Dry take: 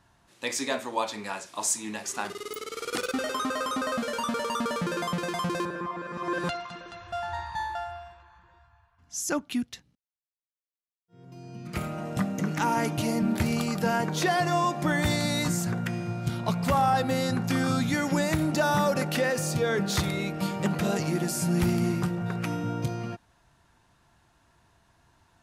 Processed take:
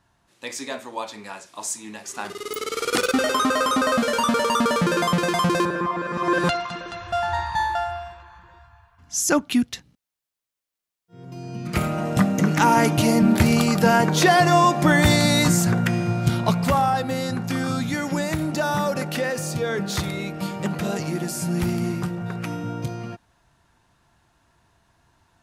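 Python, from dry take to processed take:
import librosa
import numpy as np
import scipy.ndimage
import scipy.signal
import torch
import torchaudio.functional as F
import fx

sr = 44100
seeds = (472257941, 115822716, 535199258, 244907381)

y = fx.gain(x, sr, db=fx.line((2.05, -2.0), (2.66, 9.0), (16.34, 9.0), (17.0, 1.0)))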